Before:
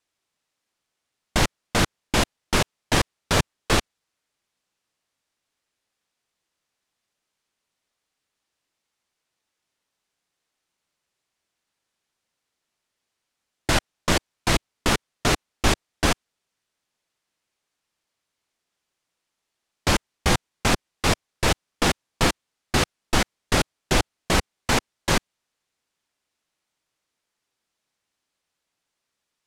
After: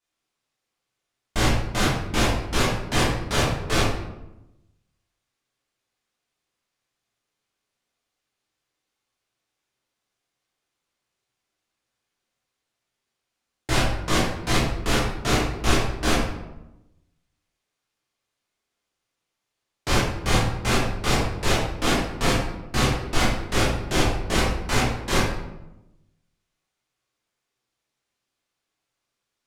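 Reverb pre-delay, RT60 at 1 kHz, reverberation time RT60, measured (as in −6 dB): 11 ms, 0.90 s, 0.95 s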